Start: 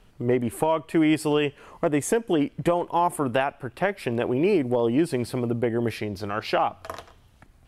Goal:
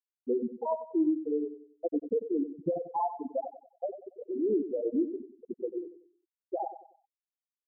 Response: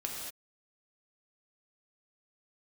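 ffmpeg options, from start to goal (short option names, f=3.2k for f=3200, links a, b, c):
-filter_complex "[0:a]asplit=2[a][b];[b]aecho=0:1:37|50:0.266|0.158[c];[a][c]amix=inputs=2:normalize=0,afftfilt=real='re*gte(hypot(re,im),0.562)':imag='im*gte(hypot(re,im),0.562)':win_size=1024:overlap=0.75,asplit=2[d][e];[e]aecho=0:1:94|188|282|376:0.266|0.0958|0.0345|0.0124[f];[d][f]amix=inputs=2:normalize=0,volume=-6dB"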